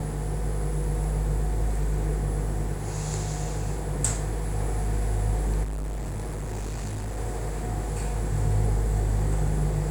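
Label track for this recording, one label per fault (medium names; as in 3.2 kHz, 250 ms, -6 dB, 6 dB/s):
5.630000	7.180000	clipped -28.5 dBFS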